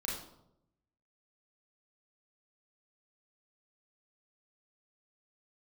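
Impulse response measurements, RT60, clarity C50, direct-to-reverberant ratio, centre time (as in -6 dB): 0.80 s, 2.5 dB, -4.0 dB, 46 ms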